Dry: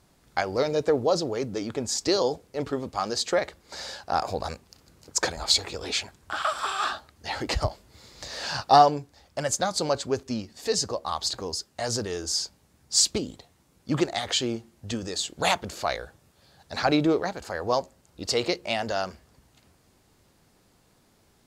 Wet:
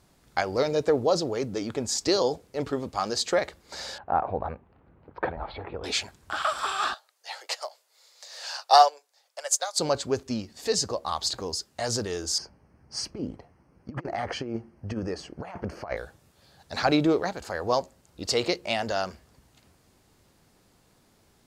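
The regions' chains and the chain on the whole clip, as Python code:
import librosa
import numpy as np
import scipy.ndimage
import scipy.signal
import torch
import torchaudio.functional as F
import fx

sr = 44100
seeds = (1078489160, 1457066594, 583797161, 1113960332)

y = fx.chain(x, sr, fx.gaussian_blur(sigma=4.3),
    fx.peak_eq(hz=860.0, db=3.0, octaves=0.66), at=(3.98, 5.84))
y = fx.chain(y, sr, fx.steep_highpass(hz=490.0, slope=36),
    fx.high_shelf(hz=3700.0, db=8.5),
    fx.upward_expand(threshold_db=-34.0, expansion=1.5), at=(6.94, 9.79))
y = fx.chain(y, sr, fx.moving_average(points=12),
    fx.over_compress(threshold_db=-31.0, ratio=-0.5), at=(12.38, 15.97))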